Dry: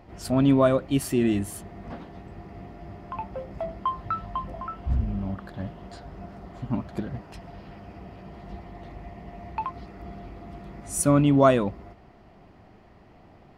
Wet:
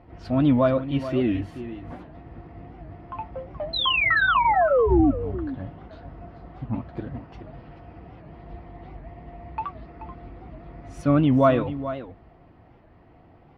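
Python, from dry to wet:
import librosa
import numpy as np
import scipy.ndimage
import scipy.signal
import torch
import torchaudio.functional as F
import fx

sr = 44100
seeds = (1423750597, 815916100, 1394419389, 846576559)

y = fx.dynamic_eq(x, sr, hz=3400.0, q=0.74, threshold_db=-45.0, ratio=4.0, max_db=3)
y = fx.spec_paint(y, sr, seeds[0], shape='fall', start_s=3.73, length_s=1.39, low_hz=250.0, high_hz=4200.0, level_db=-18.0)
y = fx.air_absorb(y, sr, metres=270.0)
y = fx.notch_comb(y, sr, f0_hz=200.0)
y = y + 10.0 ** (-12.5 / 20.0) * np.pad(y, (int(431 * sr / 1000.0), 0))[:len(y)]
y = fx.record_warp(y, sr, rpm=78.0, depth_cents=160.0)
y = F.gain(torch.from_numpy(y), 1.0).numpy()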